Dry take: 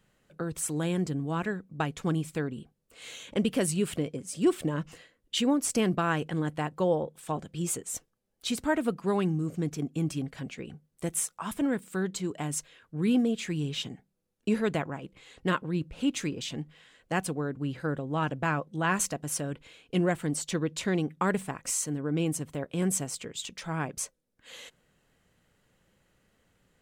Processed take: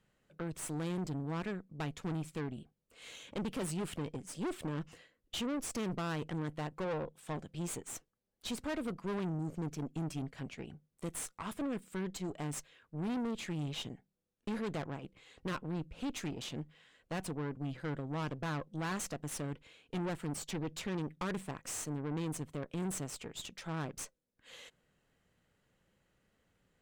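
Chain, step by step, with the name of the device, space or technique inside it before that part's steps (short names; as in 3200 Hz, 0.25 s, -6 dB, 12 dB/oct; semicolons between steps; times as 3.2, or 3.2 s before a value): tube preamp driven hard (tube stage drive 32 dB, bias 0.75; high shelf 6900 Hz -5 dB); gain -1.5 dB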